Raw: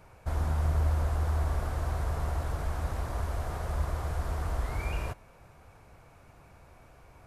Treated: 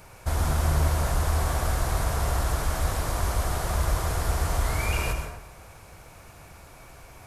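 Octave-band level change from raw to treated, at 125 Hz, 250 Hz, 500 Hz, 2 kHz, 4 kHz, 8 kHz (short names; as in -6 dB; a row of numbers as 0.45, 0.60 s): +4.0, +6.5, +7.0, +9.5, +13.5, +16.5 dB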